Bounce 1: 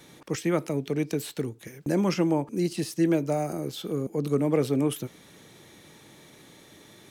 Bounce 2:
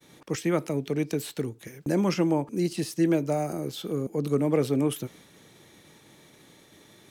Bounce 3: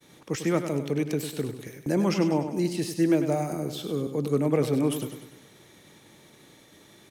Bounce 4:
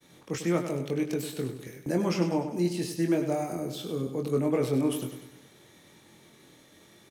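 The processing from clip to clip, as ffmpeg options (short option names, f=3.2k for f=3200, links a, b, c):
-af "agate=range=-33dB:threshold=-48dB:ratio=3:detection=peak"
-af "aecho=1:1:99|198|297|396|495|594:0.355|0.174|0.0852|0.0417|0.0205|0.01"
-filter_complex "[0:a]asplit=2[a][b];[b]adelay=23,volume=-5dB[c];[a][c]amix=inputs=2:normalize=0,volume=-3.5dB"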